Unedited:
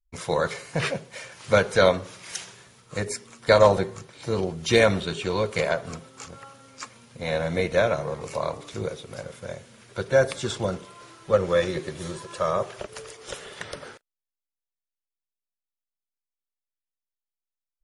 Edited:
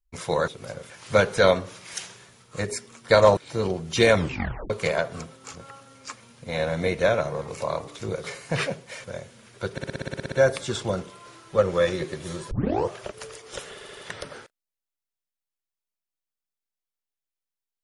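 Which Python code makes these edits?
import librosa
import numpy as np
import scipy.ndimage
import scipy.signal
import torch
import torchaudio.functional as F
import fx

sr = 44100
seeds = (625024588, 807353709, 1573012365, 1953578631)

y = fx.edit(x, sr, fx.swap(start_s=0.48, length_s=0.8, other_s=8.97, other_length_s=0.42),
    fx.cut(start_s=3.75, length_s=0.35),
    fx.tape_stop(start_s=4.89, length_s=0.54),
    fx.stutter(start_s=10.07, slice_s=0.06, count=11),
    fx.tape_start(start_s=12.26, length_s=0.4),
    fx.stutter(start_s=13.48, slice_s=0.08, count=4), tone=tone)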